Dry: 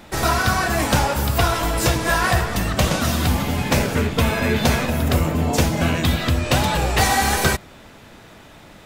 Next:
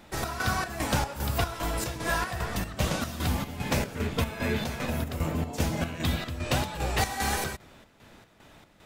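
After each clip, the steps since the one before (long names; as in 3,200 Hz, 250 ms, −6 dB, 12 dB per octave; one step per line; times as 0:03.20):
square-wave tremolo 2.5 Hz, depth 60%, duty 60%
level −8.5 dB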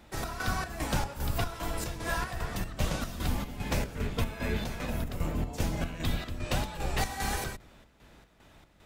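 sub-octave generator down 2 octaves, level +1 dB
level −4.5 dB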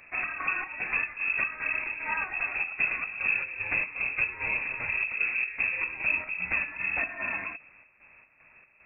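speech leveller 0.5 s
voice inversion scrambler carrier 2,600 Hz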